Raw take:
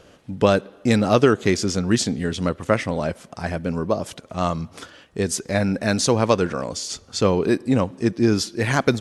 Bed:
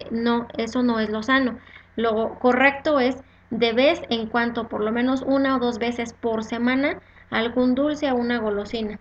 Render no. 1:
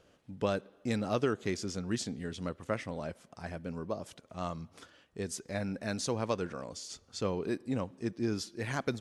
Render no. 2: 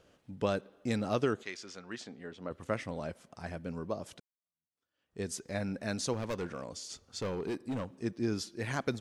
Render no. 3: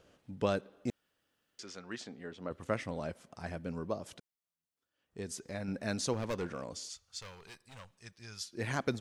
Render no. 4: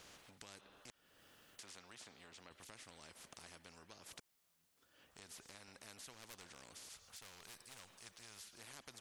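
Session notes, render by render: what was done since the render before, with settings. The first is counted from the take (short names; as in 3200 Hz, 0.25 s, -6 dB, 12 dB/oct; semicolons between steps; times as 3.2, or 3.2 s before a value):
gain -14.5 dB
1.42–2.5 band-pass 2800 Hz -> 640 Hz, Q 0.65; 4.2–5.2 fade in exponential; 6.13–8 hard clip -31 dBFS
0.9–1.59 room tone; 3.97–5.68 compressor 1.5:1, threshold -42 dBFS; 6.89–8.53 passive tone stack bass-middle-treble 10-0-10
compressor 2:1, threshold -52 dBFS, peak gain reduction 14.5 dB; spectral compressor 4:1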